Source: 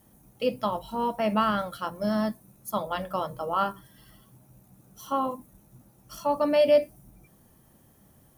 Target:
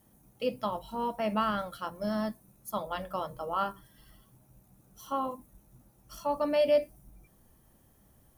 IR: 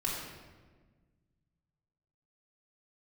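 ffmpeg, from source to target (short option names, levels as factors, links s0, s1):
-af "asubboost=boost=2.5:cutoff=74,volume=0.596"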